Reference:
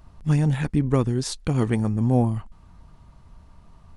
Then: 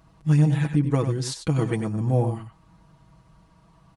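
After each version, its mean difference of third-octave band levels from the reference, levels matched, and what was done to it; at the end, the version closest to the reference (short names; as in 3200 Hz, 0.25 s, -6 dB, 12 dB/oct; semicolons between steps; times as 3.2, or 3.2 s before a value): 2.0 dB: HPF 67 Hz 12 dB/oct; comb 6.2 ms, depth 72%; on a send: echo 95 ms -9 dB; on the sum: gain -3 dB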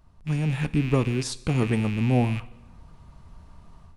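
4.0 dB: rattling part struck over -32 dBFS, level -24 dBFS; AGC gain up to 9.5 dB; two-slope reverb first 0.75 s, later 2.2 s, DRR 14.5 dB; gain -8 dB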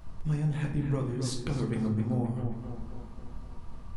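7.5 dB: compressor 3:1, threshold -35 dBFS, peak gain reduction 15.5 dB; on a send: tape echo 0.265 s, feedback 63%, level -6 dB, low-pass 2500 Hz; on the sum: shoebox room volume 68 m³, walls mixed, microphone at 0.63 m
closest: first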